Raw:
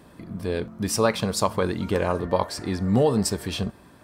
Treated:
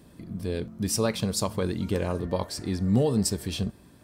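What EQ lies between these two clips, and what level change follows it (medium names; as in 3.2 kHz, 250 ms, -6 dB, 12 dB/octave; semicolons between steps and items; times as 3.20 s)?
peaking EQ 1.1 kHz -9.5 dB 2.5 oct; 0.0 dB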